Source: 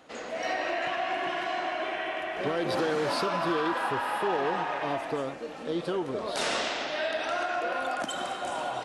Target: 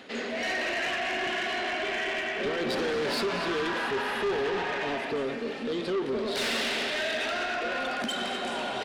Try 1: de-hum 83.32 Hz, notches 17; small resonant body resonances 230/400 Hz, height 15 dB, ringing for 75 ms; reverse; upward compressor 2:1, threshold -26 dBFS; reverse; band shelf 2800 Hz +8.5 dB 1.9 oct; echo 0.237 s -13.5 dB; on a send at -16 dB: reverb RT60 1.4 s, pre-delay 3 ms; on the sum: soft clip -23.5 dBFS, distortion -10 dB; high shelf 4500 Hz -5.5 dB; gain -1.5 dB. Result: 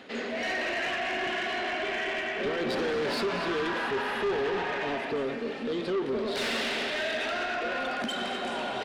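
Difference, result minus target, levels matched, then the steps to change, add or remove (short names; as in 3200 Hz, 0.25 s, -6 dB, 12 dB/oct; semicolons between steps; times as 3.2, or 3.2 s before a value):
8000 Hz band -3.5 dB
remove: high shelf 4500 Hz -5.5 dB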